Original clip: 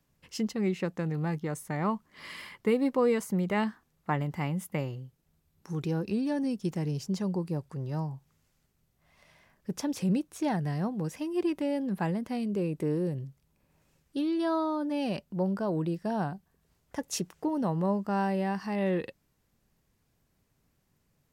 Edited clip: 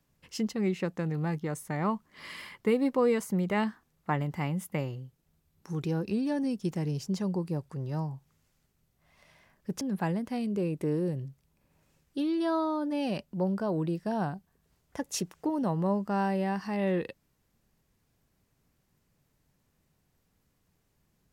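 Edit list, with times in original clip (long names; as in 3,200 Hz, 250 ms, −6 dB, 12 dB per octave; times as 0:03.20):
0:09.81–0:11.80: remove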